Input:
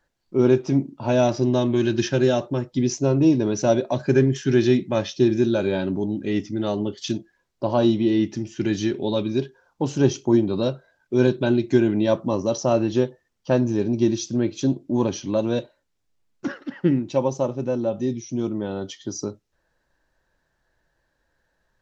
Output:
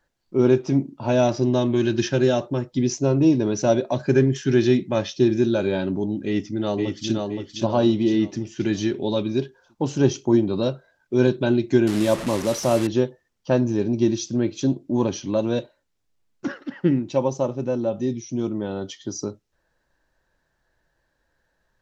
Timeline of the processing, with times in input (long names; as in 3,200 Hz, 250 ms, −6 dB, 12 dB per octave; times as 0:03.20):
0:06.25–0:07.14: delay throw 520 ms, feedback 40%, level −3.5 dB
0:11.87–0:12.87: linear delta modulator 64 kbit/s, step −25 dBFS